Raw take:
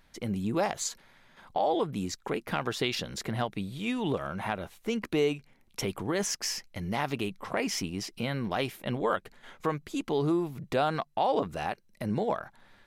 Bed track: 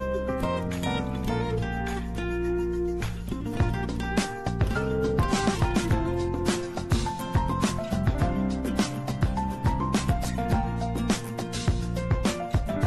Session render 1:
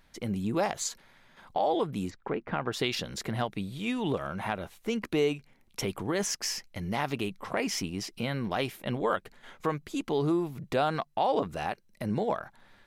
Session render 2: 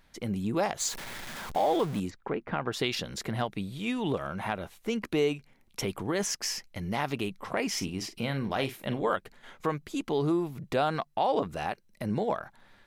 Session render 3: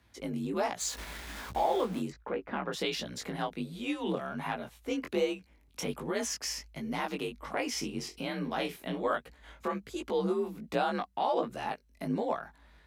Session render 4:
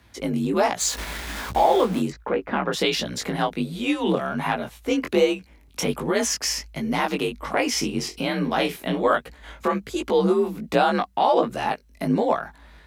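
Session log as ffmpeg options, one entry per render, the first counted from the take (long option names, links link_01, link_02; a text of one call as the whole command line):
ffmpeg -i in.wav -filter_complex "[0:a]asplit=3[link_01][link_02][link_03];[link_01]afade=type=out:start_time=2.09:duration=0.02[link_04];[link_02]lowpass=1900,afade=type=in:start_time=2.09:duration=0.02,afade=type=out:start_time=2.72:duration=0.02[link_05];[link_03]afade=type=in:start_time=2.72:duration=0.02[link_06];[link_04][link_05][link_06]amix=inputs=3:normalize=0" out.wav
ffmpeg -i in.wav -filter_complex "[0:a]asettb=1/sr,asplit=3[link_01][link_02][link_03];[link_01]atrim=end=0.804[link_04];[link_02]atrim=start=0.8:end=2,asetpts=PTS-STARTPTS,afade=type=in:duration=0.004:curve=qsin,afade=type=out:start_time=1.196:duration=0.004:curve=qsin,aeval=exprs='val(0)+0.5*0.0178*sgn(val(0))':channel_layout=same[link_05];[link_03]atrim=start=1.996[link_06];[link_04][link_05]acrossfade=duration=0.004:curve1=hsin:curve2=qsin[link_07];[link_07][link_06]acrossfade=duration=0.004:curve1=qsin:curve2=hsin,asettb=1/sr,asplit=3[link_08][link_09][link_10];[link_08]atrim=end=7.724[link_11];[link_09]atrim=start=7.72:end=9.09,asetpts=PTS-STARTPTS,afade=type=in:duration=0.004:curve=qsin,afade=type=out:start_time=1.366:duration=0.004:curve=qsin,asplit=2[link_12][link_13];[link_13]adelay=44,volume=-11dB[link_14];[link_12][link_14]amix=inputs=2:normalize=0,atrim=end_sample=60417[link_15];[link_10]atrim=start=9.086[link_16];[link_11][link_15]acrossfade=duration=0.004:curve1=hsin:curve2=qsin[link_17];[link_17][link_16]acrossfade=duration=0.004:curve1=qsin:curve2=hsin" out.wav
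ffmpeg -i in.wav -af "flanger=delay=16:depth=6.4:speed=1.3,afreqshift=47" out.wav
ffmpeg -i in.wav -af "volume=10.5dB" out.wav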